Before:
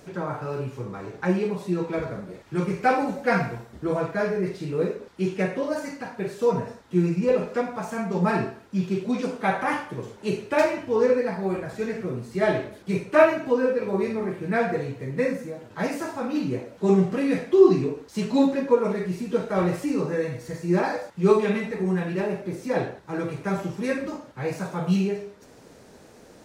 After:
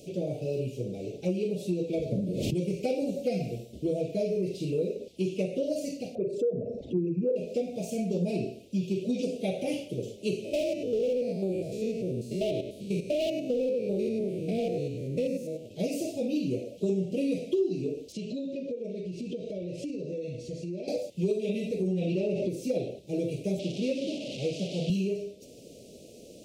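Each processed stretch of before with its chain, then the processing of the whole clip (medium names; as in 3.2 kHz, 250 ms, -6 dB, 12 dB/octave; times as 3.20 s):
2.12–2.54 s: peaking EQ 160 Hz +12 dB 2 oct + swell ahead of each attack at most 51 dB/s
6.15–7.36 s: resonances exaggerated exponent 2 + upward compressor, threshold -26 dBFS
10.44–15.66 s: spectrogram pixelated in time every 100 ms + hard clipper -20.5 dBFS
18.12–20.88 s: low-pass 5.4 kHz + band-stop 780 Hz, Q 5.1 + compression 12:1, threshold -32 dBFS
21.87–22.49 s: low-pass 6 kHz + level flattener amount 70%
23.59–24.90 s: one-bit delta coder 64 kbps, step -29.5 dBFS + Chebyshev band-pass 160–4200 Hz
whole clip: elliptic band-stop 600–2700 Hz, stop band 40 dB; bass shelf 120 Hz -7.5 dB; compression 5:1, threshold -28 dBFS; trim +2.5 dB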